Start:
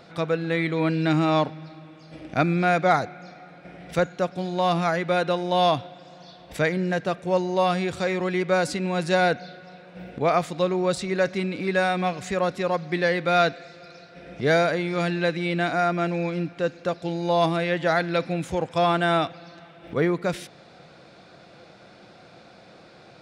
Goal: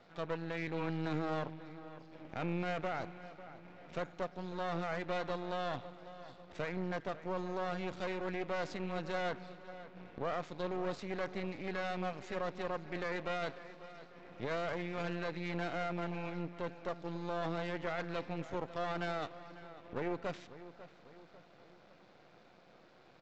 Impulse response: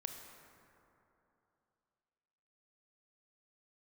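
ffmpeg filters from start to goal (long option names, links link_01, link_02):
-filter_complex "[0:a]aresample=16000,aeval=exprs='max(val(0),0)':channel_layout=same,aresample=44100,lowshelf=frequency=81:gain=-10,alimiter=limit=-18.5dB:level=0:latency=1:release=13,aemphasis=mode=reproduction:type=50fm,asplit=2[link_01][link_02];[link_02]adelay=547,lowpass=frequency=3600:poles=1,volume=-15dB,asplit=2[link_03][link_04];[link_04]adelay=547,lowpass=frequency=3600:poles=1,volume=0.49,asplit=2[link_05][link_06];[link_06]adelay=547,lowpass=frequency=3600:poles=1,volume=0.49,asplit=2[link_07][link_08];[link_08]adelay=547,lowpass=frequency=3600:poles=1,volume=0.49,asplit=2[link_09][link_10];[link_10]adelay=547,lowpass=frequency=3600:poles=1,volume=0.49[link_11];[link_01][link_03][link_05][link_07][link_09][link_11]amix=inputs=6:normalize=0,volume=-8dB"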